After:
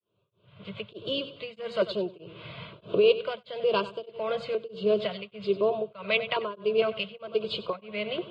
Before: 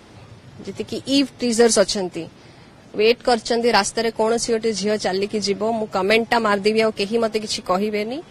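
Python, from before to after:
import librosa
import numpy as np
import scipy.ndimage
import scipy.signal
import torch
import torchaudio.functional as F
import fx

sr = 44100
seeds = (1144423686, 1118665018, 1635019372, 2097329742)

y = fx.fade_in_head(x, sr, length_s=2.07)
y = fx.recorder_agc(y, sr, target_db=-8.5, rise_db_per_s=21.0, max_gain_db=30)
y = fx.filter_lfo_notch(y, sr, shape='square', hz=1.1, low_hz=370.0, high_hz=2000.0, q=1.1)
y = fx.cabinet(y, sr, low_hz=190.0, low_slope=12, high_hz=3200.0, hz=(210.0, 290.0, 510.0, 810.0, 1300.0, 2300.0), db=(6, -8, -7, -9, -10, -5))
y = fx.fixed_phaser(y, sr, hz=1200.0, stages=8)
y = fx.echo_feedback(y, sr, ms=95, feedback_pct=37, wet_db=-14.0)
y = y * np.abs(np.cos(np.pi * 1.6 * np.arange(len(y)) / sr))
y = y * 10.0 ** (1.5 / 20.0)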